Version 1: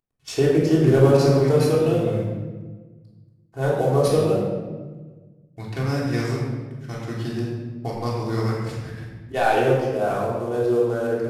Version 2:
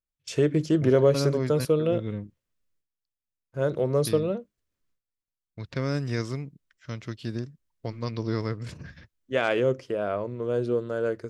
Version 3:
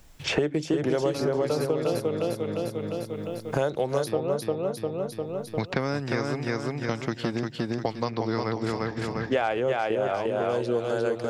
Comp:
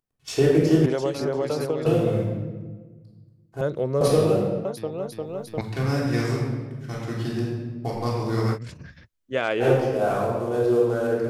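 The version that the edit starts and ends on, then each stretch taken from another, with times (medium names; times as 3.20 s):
1
0.86–1.86 s: from 3
3.61–4.01 s: from 2
4.65–5.61 s: from 3
8.56–9.62 s: from 2, crossfade 0.06 s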